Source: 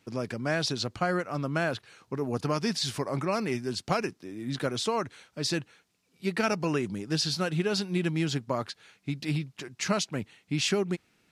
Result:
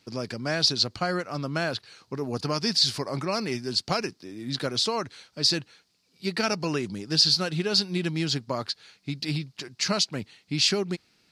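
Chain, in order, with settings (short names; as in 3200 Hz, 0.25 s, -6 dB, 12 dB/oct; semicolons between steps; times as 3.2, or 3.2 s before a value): bell 4600 Hz +12 dB 0.63 oct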